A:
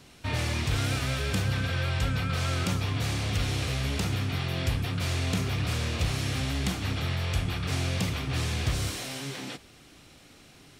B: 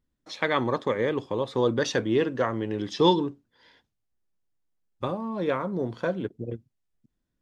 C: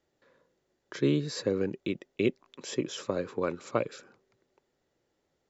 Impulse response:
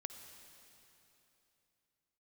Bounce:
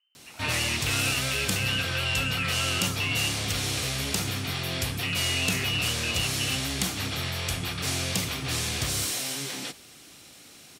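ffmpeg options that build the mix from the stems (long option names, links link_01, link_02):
-filter_complex "[0:a]adelay=150,volume=0.5dB[link_01];[1:a]volume=-1.5dB,lowpass=frequency=2600:width_type=q:width=0.5098,lowpass=frequency=2600:width_type=q:width=0.6013,lowpass=frequency=2600:width_type=q:width=0.9,lowpass=frequency=2600:width_type=q:width=2.563,afreqshift=-3100,alimiter=level_in=2dB:limit=-24dB:level=0:latency=1,volume=-2dB,volume=0dB[link_02];[link_01][link_02]amix=inputs=2:normalize=0,highpass=frequency=150:poles=1,highshelf=frequency=4600:gain=12"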